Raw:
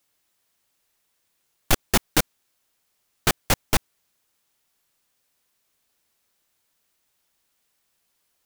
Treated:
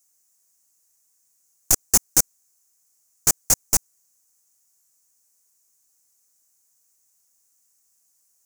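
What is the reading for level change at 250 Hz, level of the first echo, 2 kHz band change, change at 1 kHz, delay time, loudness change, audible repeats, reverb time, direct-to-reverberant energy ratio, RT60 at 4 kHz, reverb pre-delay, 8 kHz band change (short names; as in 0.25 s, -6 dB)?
-7.0 dB, none, -9.0 dB, -7.5 dB, none, +4.5 dB, none, none, none, none, none, +10.0 dB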